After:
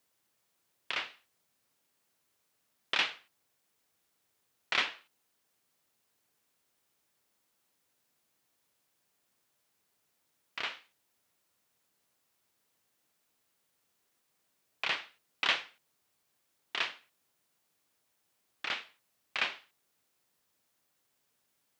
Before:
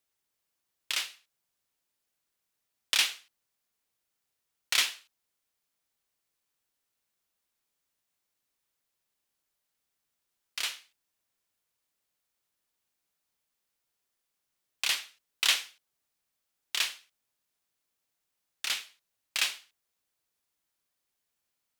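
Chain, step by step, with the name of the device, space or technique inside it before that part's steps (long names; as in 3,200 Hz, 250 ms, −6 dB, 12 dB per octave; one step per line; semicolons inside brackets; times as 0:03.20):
cassette deck with a dirty head (head-to-tape spacing loss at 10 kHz 42 dB; tape wow and flutter; white noise bed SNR 34 dB)
high-pass filter 94 Hz
level +8.5 dB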